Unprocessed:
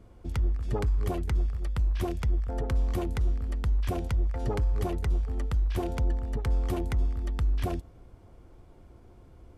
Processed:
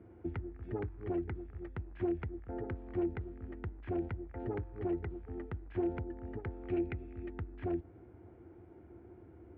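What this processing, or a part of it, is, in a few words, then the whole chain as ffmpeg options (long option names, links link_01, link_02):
bass amplifier: -filter_complex "[0:a]asettb=1/sr,asplit=3[link_01][link_02][link_03];[link_01]atrim=end=6.674[link_04];[link_02]atrim=start=6.67:end=7.3,asetpts=PTS-STARTPTS,afade=type=in:duration=0.004:curve=qsin,afade=type=out:start_time=0.626:duration=0.004:curve=qsin,equalizer=frequency=1000:width_type=o:width=0.33:gain=-10,equalizer=frequency=2500:width_type=o:width=0.33:gain=12,equalizer=frequency=4000:width_type=o:width=0.33:gain=4[link_05];[link_03]atrim=start=7.296[link_06];[link_04][link_05]acrossfade=duration=0.004:curve1=hsin:curve2=qsin[link_07];[link_07][link_06]acrossfade=duration=0.004:curve1=qsin:curve2=hsin,acompressor=threshold=-32dB:ratio=5,highpass=frequency=78:width=0.5412,highpass=frequency=78:width=1.3066,equalizer=frequency=140:width_type=q:width=4:gain=-7,equalizer=frequency=210:width_type=q:width=4:gain=-3,equalizer=frequency=340:width_type=q:width=4:gain=9,equalizer=frequency=560:width_type=q:width=4:gain=-6,equalizer=frequency=1100:width_type=q:width=4:gain=-9,lowpass=frequency=2100:width=0.5412,lowpass=frequency=2100:width=1.3066"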